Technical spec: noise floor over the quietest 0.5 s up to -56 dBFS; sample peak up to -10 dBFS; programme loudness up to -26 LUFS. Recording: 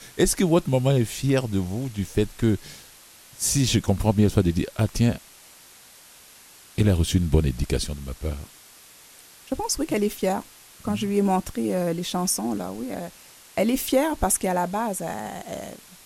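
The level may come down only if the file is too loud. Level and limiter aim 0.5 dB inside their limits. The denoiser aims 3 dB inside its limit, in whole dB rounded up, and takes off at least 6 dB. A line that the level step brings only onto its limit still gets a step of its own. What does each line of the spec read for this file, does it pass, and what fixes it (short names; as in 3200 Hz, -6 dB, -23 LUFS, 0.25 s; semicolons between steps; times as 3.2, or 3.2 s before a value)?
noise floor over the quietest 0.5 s -50 dBFS: fail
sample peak -3.5 dBFS: fail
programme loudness -24.0 LUFS: fail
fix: denoiser 7 dB, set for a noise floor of -50 dBFS; gain -2.5 dB; limiter -10.5 dBFS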